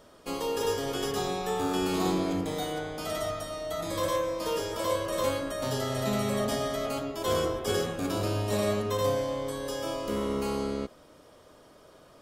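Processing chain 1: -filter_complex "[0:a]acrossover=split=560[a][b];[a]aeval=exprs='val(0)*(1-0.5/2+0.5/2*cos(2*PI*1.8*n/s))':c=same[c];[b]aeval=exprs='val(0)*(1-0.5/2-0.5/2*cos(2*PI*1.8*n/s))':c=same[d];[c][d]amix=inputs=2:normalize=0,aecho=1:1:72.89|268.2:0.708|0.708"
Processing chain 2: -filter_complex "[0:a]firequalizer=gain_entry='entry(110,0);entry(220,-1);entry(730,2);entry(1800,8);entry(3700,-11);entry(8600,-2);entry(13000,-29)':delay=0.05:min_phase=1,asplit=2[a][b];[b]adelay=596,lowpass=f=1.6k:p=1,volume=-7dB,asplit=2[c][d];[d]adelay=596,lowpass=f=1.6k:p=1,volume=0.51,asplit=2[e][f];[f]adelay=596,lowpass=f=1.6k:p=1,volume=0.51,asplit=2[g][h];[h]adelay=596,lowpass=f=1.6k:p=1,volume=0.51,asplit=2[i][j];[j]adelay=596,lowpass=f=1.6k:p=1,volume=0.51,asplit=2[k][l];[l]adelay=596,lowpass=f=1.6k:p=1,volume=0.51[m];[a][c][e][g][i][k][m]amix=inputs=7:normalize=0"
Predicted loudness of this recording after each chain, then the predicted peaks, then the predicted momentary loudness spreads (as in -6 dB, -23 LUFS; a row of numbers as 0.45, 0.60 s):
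-29.0, -29.0 LUFS; -13.5, -13.5 dBFS; 6, 9 LU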